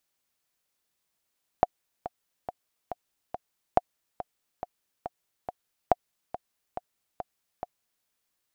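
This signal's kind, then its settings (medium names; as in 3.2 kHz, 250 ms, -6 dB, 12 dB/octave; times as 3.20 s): metronome 140 bpm, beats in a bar 5, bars 3, 721 Hz, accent 14.5 dB -5.5 dBFS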